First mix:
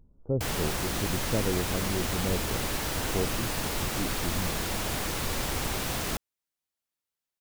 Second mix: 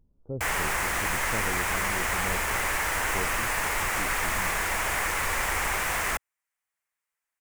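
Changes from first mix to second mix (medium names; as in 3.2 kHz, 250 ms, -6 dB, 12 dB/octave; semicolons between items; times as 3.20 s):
speech -6.5 dB; background: add graphic EQ 125/250/1000/2000/4000/8000 Hz -7/-8/+6/+12/-8/+5 dB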